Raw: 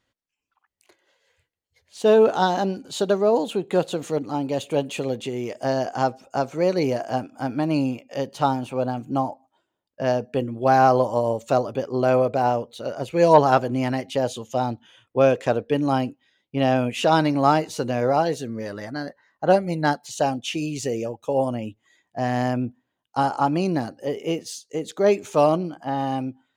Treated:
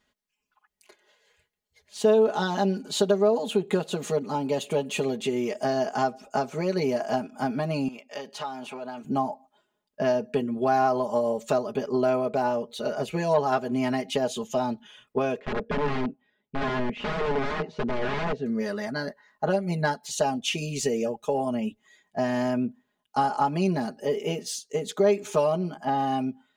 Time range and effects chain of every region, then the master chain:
7.88–9.05 s: treble shelf 8.6 kHz -9 dB + compression 16:1, threshold -26 dBFS + high-pass 760 Hz 6 dB/octave
15.39–18.46 s: integer overflow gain 19 dB + tape spacing loss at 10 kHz 44 dB
whole clip: compression 3:1, threshold -25 dBFS; comb 4.8 ms, depth 89%

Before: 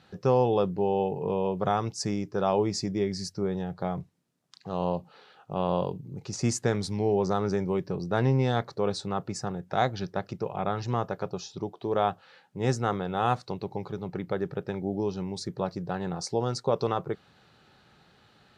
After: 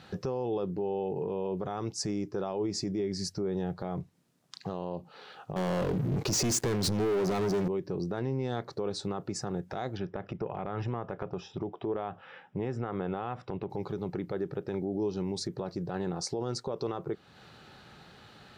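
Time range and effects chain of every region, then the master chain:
5.56–7.68 s: compression 2:1, threshold -31 dBFS + waveshaping leveller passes 5
9.97–13.70 s: Savitzky-Golay filter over 25 samples + compression, threshold -30 dBFS
whole clip: dynamic bell 340 Hz, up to +7 dB, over -41 dBFS, Q 1.7; compression 2:1, threshold -40 dBFS; peak limiter -30 dBFS; trim +6.5 dB

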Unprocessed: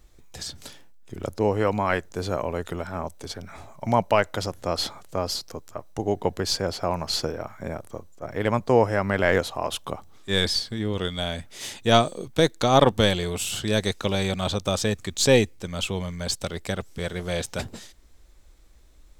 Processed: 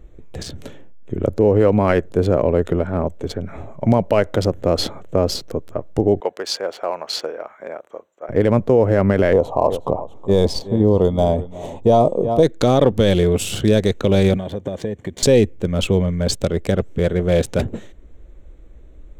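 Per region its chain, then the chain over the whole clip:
6.20–8.29 s: high-pass 820 Hz + treble shelf 5.7 kHz -6 dB
9.33–12.43 s: FFT filter 350 Hz 0 dB, 970 Hz +10 dB, 1.5 kHz -14 dB, 5.9 kHz -4 dB + delay 368 ms -17 dB
14.37–15.23 s: CVSD coder 64 kbps + compression 10:1, threshold -30 dBFS + comb of notches 1.3 kHz
whole clip: local Wiener filter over 9 samples; resonant low shelf 670 Hz +7 dB, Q 1.5; peak limiter -9 dBFS; trim +5 dB

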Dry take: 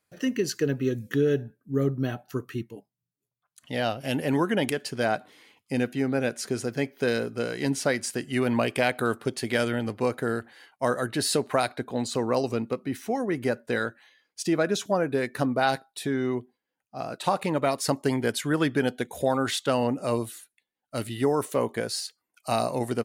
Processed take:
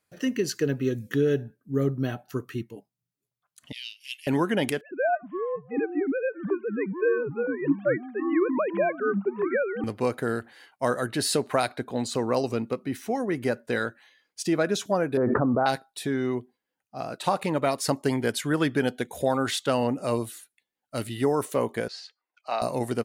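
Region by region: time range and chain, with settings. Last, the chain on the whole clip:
3.72–4.27 s: steep high-pass 2.4 kHz 48 dB/octave + treble shelf 9.6 kHz -11.5 dB
4.81–9.84 s: formants replaced by sine waves + low-pass 1.7 kHz + ever faster or slower copies 268 ms, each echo -6 st, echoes 2, each echo -6 dB
15.17–15.66 s: elliptic low-pass 1.3 kHz, stop band 80 dB + level flattener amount 100%
21.88–22.62 s: high-pass 580 Hz + distance through air 200 m
whole clip: none

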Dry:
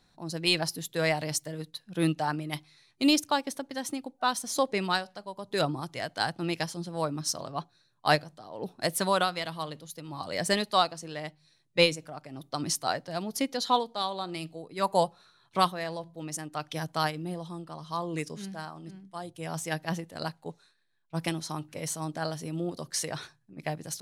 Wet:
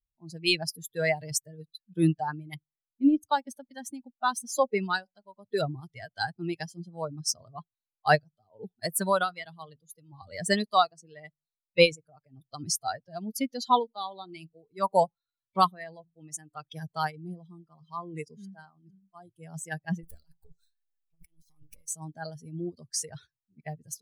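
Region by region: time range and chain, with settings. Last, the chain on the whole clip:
2.54–3.23 s: de-esser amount 70% + tape spacing loss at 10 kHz 41 dB
20.03–21.88 s: partial rectifier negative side -12 dB + treble shelf 4.5 kHz +11 dB + compressor with a negative ratio -47 dBFS
whole clip: expander on every frequency bin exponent 2; dynamic bell 3.5 kHz, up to -5 dB, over -50 dBFS, Q 2.1; trim +5.5 dB

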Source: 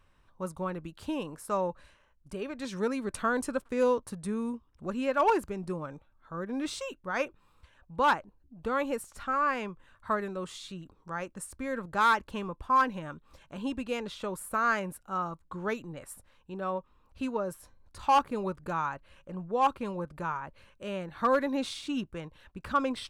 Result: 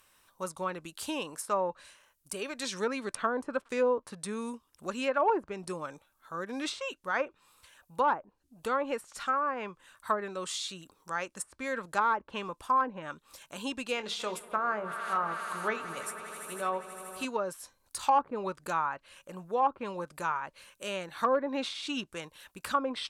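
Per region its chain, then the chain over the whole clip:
13.95–17.25 s: hum notches 50/100/150/200/250/300/350/400/450 Hz + doubling 24 ms -12 dB + echo with a slow build-up 80 ms, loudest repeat 5, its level -18 dB
whole clip: RIAA curve recording; low-pass that closes with the level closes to 870 Hz, closed at -24.5 dBFS; treble shelf 9.1 kHz +7.5 dB; trim +2 dB

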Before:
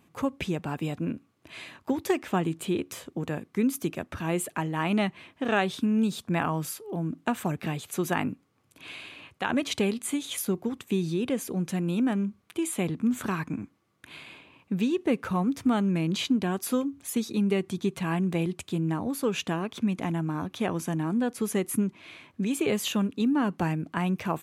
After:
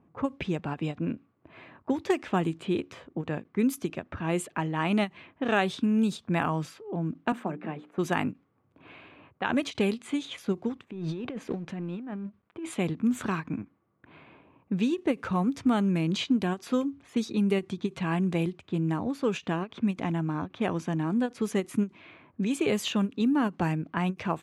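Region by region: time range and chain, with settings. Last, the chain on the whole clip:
7.32–7.98 s: high-pass 190 Hz 24 dB/octave + peaking EQ 5.5 kHz -12.5 dB 2.4 oct + hum notches 60/120/180/240/300/360/420/480 Hz
10.85–12.75 s: companding laws mixed up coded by A + compressor with a negative ratio -34 dBFS
whole clip: level-controlled noise filter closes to 1 kHz, open at -21.5 dBFS; endings held to a fixed fall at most 390 dB/s

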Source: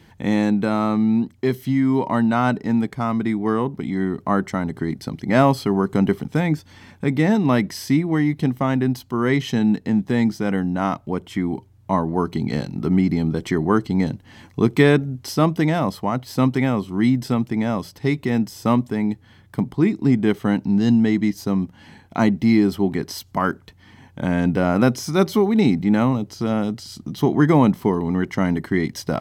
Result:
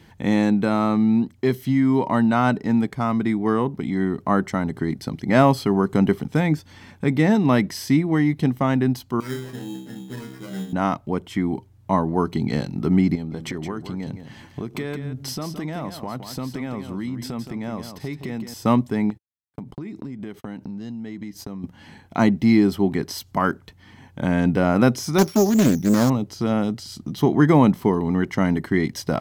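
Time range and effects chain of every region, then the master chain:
9.20–10.73 s: inharmonic resonator 63 Hz, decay 0.74 s, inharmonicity 0.002 + sample-rate reducer 3.5 kHz
13.15–18.54 s: compression, threshold -26 dBFS + delay 168 ms -9 dB
19.10–21.64 s: gate -38 dBFS, range -60 dB + compression 16:1, threshold -29 dBFS
25.18–26.10 s: sorted samples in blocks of 8 samples + expander -26 dBFS + loudspeaker Doppler distortion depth 0.4 ms
whole clip: none

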